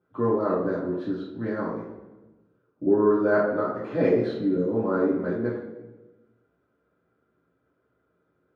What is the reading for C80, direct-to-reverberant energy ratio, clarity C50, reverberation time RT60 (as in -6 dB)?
5.0 dB, -9.0 dB, 1.5 dB, 1.2 s